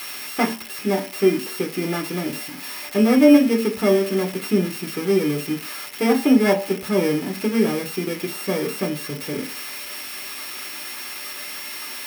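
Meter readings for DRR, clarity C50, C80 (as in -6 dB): 1.5 dB, 14.5 dB, 18.5 dB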